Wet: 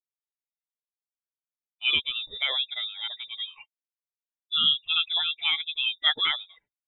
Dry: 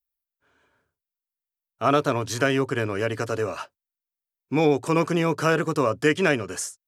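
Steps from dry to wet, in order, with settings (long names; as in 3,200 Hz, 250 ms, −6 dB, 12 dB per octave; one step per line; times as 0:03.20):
spectral dynamics exaggerated over time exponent 2
voice inversion scrambler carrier 3,700 Hz
level −1 dB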